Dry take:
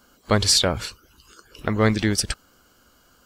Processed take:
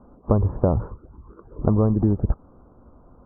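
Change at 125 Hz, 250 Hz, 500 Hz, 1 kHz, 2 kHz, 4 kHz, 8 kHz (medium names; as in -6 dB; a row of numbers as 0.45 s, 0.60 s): +5.0 dB, +2.0 dB, 0.0 dB, -4.0 dB, under -25 dB, under -40 dB, under -40 dB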